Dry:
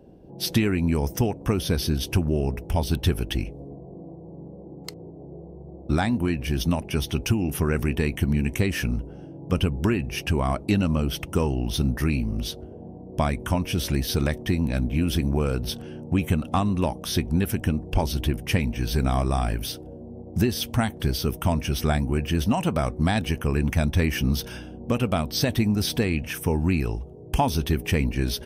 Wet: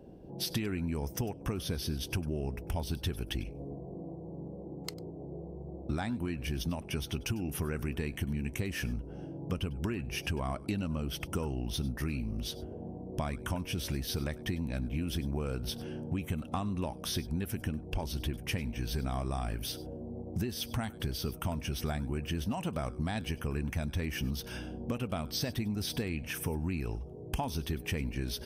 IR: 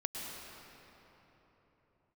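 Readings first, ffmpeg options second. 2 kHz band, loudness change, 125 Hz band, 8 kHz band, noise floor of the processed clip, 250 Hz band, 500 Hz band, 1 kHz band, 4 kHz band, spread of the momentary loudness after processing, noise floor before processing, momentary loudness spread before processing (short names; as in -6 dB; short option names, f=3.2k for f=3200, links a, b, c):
-9.5 dB, -11.0 dB, -10.5 dB, -8.0 dB, -46 dBFS, -11.0 dB, -11.0 dB, -11.5 dB, -8.0 dB, 8 LU, -42 dBFS, 15 LU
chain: -filter_complex "[0:a]acompressor=threshold=-32dB:ratio=3[a];[1:a]atrim=start_sample=2205,atrim=end_sample=4410[b];[a][b]afir=irnorm=-1:irlink=0"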